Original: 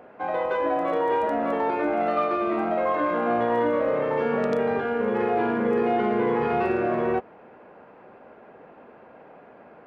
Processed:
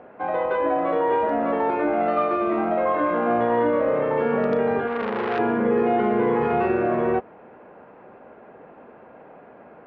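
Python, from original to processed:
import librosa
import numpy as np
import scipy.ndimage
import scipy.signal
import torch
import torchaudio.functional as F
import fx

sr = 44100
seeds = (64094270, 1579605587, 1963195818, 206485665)

y = fx.air_absorb(x, sr, metres=240.0)
y = fx.transformer_sat(y, sr, knee_hz=1400.0, at=(4.87, 5.39))
y = F.gain(torch.from_numpy(y), 3.0).numpy()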